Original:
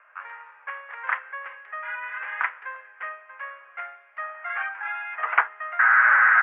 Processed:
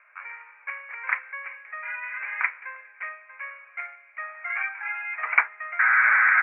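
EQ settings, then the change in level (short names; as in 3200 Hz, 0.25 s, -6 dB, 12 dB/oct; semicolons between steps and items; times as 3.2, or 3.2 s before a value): synth low-pass 2300 Hz, resonance Q 13; air absorption 410 m; -5.0 dB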